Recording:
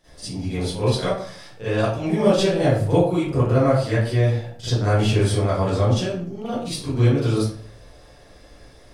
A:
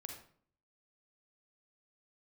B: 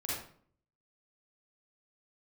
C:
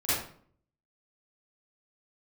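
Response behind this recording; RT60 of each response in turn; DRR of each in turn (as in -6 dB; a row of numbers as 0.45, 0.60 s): C; 0.55, 0.55, 0.55 s; 2.5, -7.0, -14.5 dB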